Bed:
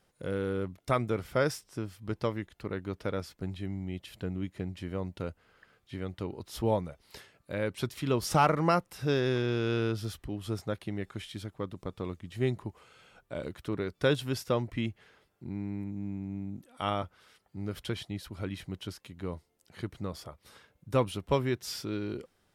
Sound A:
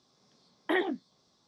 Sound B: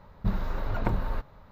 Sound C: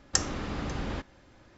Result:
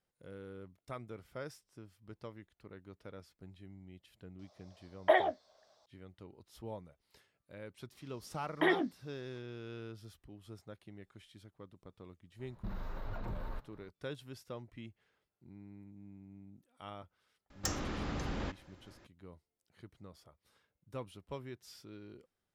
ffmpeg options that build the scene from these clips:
ffmpeg -i bed.wav -i cue0.wav -i cue1.wav -i cue2.wav -filter_complex "[1:a]asplit=2[link_01][link_02];[0:a]volume=-16.5dB[link_03];[link_01]highpass=frequency=620:width_type=q:width=7.2[link_04];[2:a]alimiter=limit=-22dB:level=0:latency=1:release=11[link_05];[3:a]asoftclip=type=tanh:threshold=-23dB[link_06];[link_04]atrim=end=1.47,asetpts=PTS-STARTPTS,volume=-3dB,afade=type=in:duration=0.004:curve=hsin,afade=type=out:start_time=1.466:duration=0.004:curve=hsin,adelay=4390[link_07];[link_02]atrim=end=1.47,asetpts=PTS-STARTPTS,volume=-1dB,afade=type=in:duration=0.004:curve=hsin,afade=type=out:start_time=1.466:duration=0.004:curve=hsin,adelay=7920[link_08];[link_05]atrim=end=1.51,asetpts=PTS-STARTPTS,volume=-10.5dB,afade=type=in:duration=0.004:curve=hsin,afade=type=out:start_time=1.506:duration=0.004:curve=hsin,adelay=12390[link_09];[link_06]atrim=end=1.57,asetpts=PTS-STARTPTS,volume=-3.5dB,afade=type=in:duration=0.004:curve=hsin,afade=type=out:start_time=1.566:duration=0.004:curve=hsin,adelay=17500[link_10];[link_03][link_07][link_08][link_09][link_10]amix=inputs=5:normalize=0" out.wav

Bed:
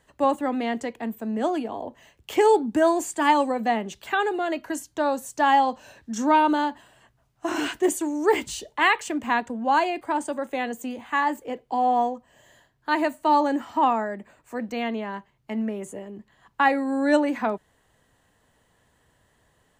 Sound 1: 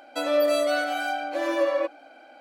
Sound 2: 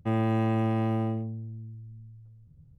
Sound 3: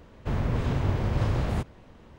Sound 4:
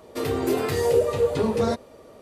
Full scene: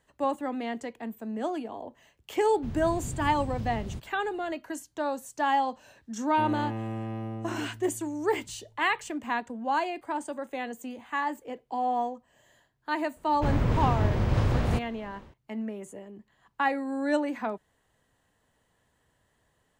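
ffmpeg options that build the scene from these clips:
ffmpeg -i bed.wav -i cue0.wav -i cue1.wav -i cue2.wav -filter_complex "[3:a]asplit=2[link_01][link_02];[0:a]volume=-6.5dB[link_03];[link_01]acrossover=split=350|3000[link_04][link_05][link_06];[link_05]acompressor=threshold=-44dB:ratio=6:attack=3.2:release=140:knee=2.83:detection=peak[link_07];[link_04][link_07][link_06]amix=inputs=3:normalize=0[link_08];[link_02]dynaudnorm=framelen=130:gausssize=3:maxgain=11dB[link_09];[link_08]atrim=end=2.18,asetpts=PTS-STARTPTS,volume=-9dB,afade=type=in:duration=0.004:curve=hsin,afade=type=out:start_time=2.176:duration=0.004:curve=hsin,adelay=2370[link_10];[2:a]atrim=end=2.78,asetpts=PTS-STARTPTS,volume=-8dB,afade=type=in:duration=0.004:curve=hsin,afade=type=out:start_time=2.776:duration=0.004:curve=hsin,adelay=6320[link_11];[link_09]atrim=end=2.18,asetpts=PTS-STARTPTS,volume=-9dB,afade=type=in:duration=0.004:curve=hsin,afade=type=out:start_time=2.176:duration=0.004:curve=hsin,adelay=580356S[link_12];[link_03][link_10][link_11][link_12]amix=inputs=4:normalize=0" out.wav

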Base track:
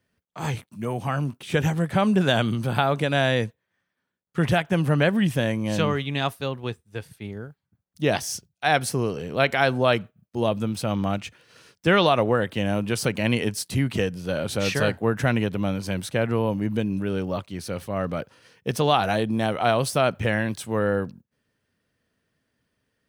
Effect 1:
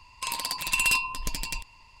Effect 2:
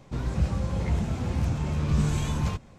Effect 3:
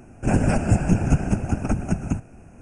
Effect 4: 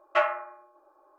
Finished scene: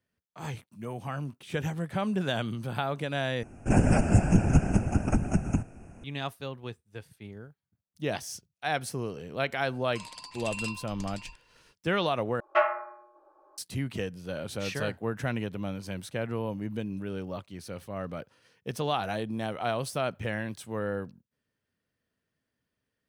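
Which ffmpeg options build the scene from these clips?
ffmpeg -i bed.wav -i cue0.wav -i cue1.wav -i cue2.wav -i cue3.wav -filter_complex "[0:a]volume=-9dB[link_01];[1:a]lowpass=frequency=9100:width=0.5412,lowpass=frequency=9100:width=1.3066[link_02];[4:a]aemphasis=mode=reproduction:type=75fm[link_03];[link_01]asplit=3[link_04][link_05][link_06];[link_04]atrim=end=3.434[link_07];[3:a]atrim=end=2.61,asetpts=PTS-STARTPTS,volume=-2.5dB[link_08];[link_05]atrim=start=6.036:end=12.404[link_09];[link_03]atrim=end=1.18[link_10];[link_06]atrim=start=13.576[link_11];[link_02]atrim=end=2,asetpts=PTS-STARTPTS,volume=-13dB,afade=type=in:duration=0.004:curve=hsin,afade=type=out:start_time=1.996:duration=0.004:curve=hsin,adelay=9730[link_12];[link_07][link_08]acrossfade=duration=0.004:curve1=hsin:curve2=hsin[link_13];[link_13][link_09]acrossfade=duration=0.004:curve1=hsin:curve2=hsin[link_14];[link_14][link_10]acrossfade=duration=0.004:curve1=hsin:curve2=hsin[link_15];[link_15][link_11]acrossfade=duration=0.004:curve1=hsin:curve2=hsin[link_16];[link_16][link_12]amix=inputs=2:normalize=0" out.wav

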